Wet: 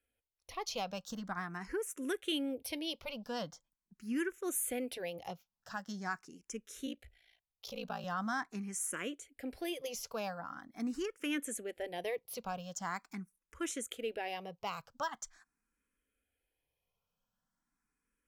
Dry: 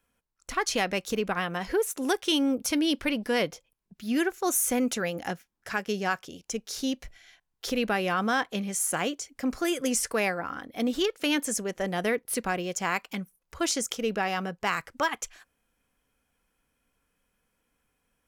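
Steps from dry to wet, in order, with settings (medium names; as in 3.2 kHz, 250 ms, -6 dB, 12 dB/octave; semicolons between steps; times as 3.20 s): 6.86–8.04 s: ring modulator 28 Hz; barber-pole phaser +0.43 Hz; trim -8.5 dB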